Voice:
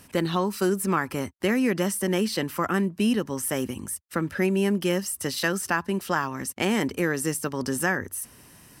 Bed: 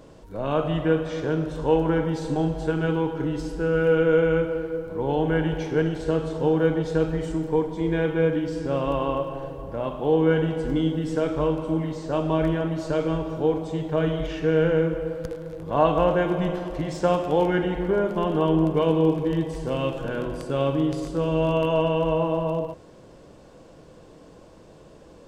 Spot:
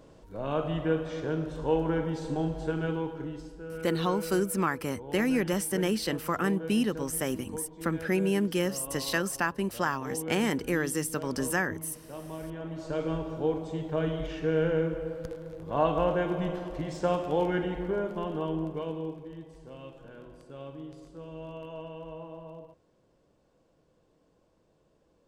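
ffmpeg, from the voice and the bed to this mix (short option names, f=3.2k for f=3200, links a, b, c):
-filter_complex "[0:a]adelay=3700,volume=-3.5dB[a];[1:a]volume=5dB,afade=t=out:st=2.77:d=0.87:silence=0.281838,afade=t=in:st=12.47:d=0.62:silence=0.281838,afade=t=out:st=17.57:d=1.72:silence=0.211349[b];[a][b]amix=inputs=2:normalize=0"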